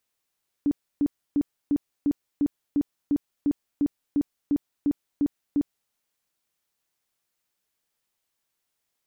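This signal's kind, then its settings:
tone bursts 288 Hz, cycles 15, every 0.35 s, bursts 15, −18.5 dBFS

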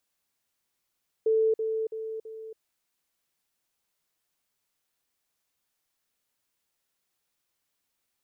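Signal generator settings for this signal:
level staircase 442 Hz −20 dBFS, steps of −6 dB, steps 4, 0.28 s 0.05 s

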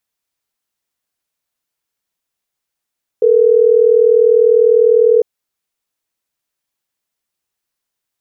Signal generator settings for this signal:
call progress tone ringback tone, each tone −9.5 dBFS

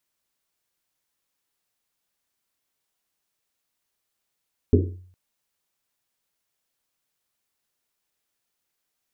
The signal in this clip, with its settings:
drum after Risset length 0.41 s, pitch 91 Hz, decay 0.60 s, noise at 330 Hz, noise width 230 Hz, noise 45%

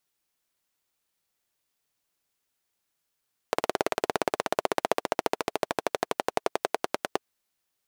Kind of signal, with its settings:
pulse-train model of a single-cylinder engine, changing speed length 3.66 s, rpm 2,200, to 1,100, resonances 440/630 Hz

